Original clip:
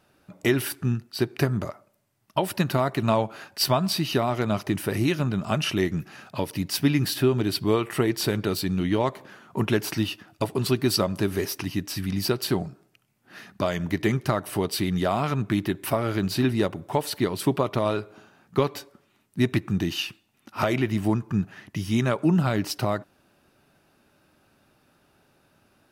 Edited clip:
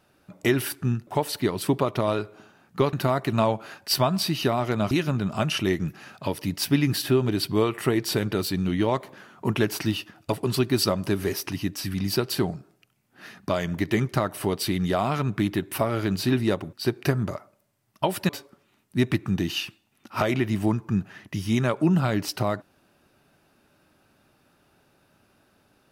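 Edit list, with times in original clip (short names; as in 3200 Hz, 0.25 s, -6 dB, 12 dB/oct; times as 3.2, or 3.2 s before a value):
1.07–2.63 swap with 16.85–18.71
4.61–5.03 cut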